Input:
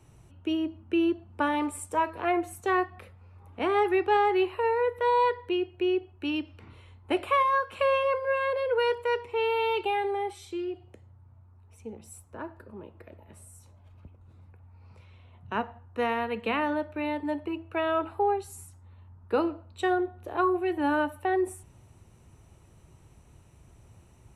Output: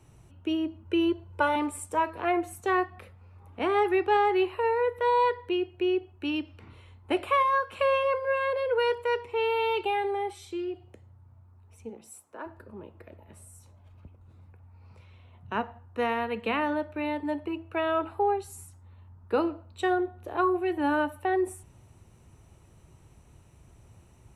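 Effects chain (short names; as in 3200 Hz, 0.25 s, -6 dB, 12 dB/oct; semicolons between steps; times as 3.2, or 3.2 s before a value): 0.85–1.56 comb 2 ms, depth 91%; 11.89–12.45 HPF 180 Hz -> 390 Hz 12 dB/oct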